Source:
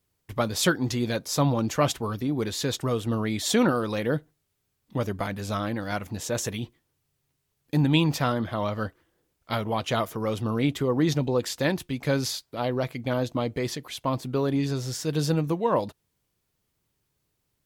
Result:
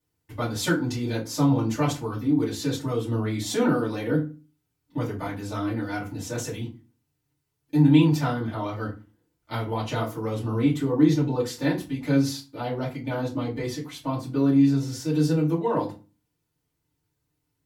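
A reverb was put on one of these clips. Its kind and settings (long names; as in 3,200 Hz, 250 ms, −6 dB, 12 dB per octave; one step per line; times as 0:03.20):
feedback delay network reverb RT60 0.32 s, low-frequency decay 1.45×, high-frequency decay 0.7×, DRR −8.5 dB
level −11.5 dB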